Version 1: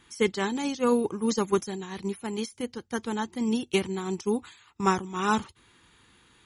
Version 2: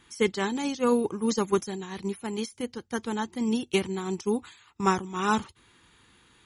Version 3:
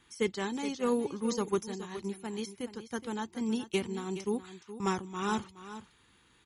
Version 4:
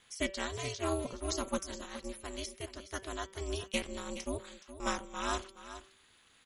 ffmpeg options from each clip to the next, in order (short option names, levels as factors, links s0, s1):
-af anull
-filter_complex "[0:a]acrossover=split=600|3600[s0][s1][s2];[s1]asoftclip=type=tanh:threshold=0.075[s3];[s0][s3][s2]amix=inputs=3:normalize=0,aecho=1:1:420:0.224,volume=0.531"
-af "tiltshelf=f=1100:g=-4.5,aeval=exprs='val(0)*sin(2*PI*160*n/s)':c=same,bandreject=f=192.9:t=h:w=4,bandreject=f=385.8:t=h:w=4,bandreject=f=578.7:t=h:w=4,bandreject=f=771.6:t=h:w=4,bandreject=f=964.5:t=h:w=4,bandreject=f=1157.4:t=h:w=4,bandreject=f=1350.3:t=h:w=4,bandreject=f=1543.2:t=h:w=4,bandreject=f=1736.1:t=h:w=4,bandreject=f=1929:t=h:w=4,bandreject=f=2121.9:t=h:w=4,bandreject=f=2314.8:t=h:w=4,bandreject=f=2507.7:t=h:w=4,bandreject=f=2700.6:t=h:w=4,bandreject=f=2893.5:t=h:w=4,bandreject=f=3086.4:t=h:w=4,bandreject=f=3279.3:t=h:w=4,bandreject=f=3472.2:t=h:w=4,volume=1.19"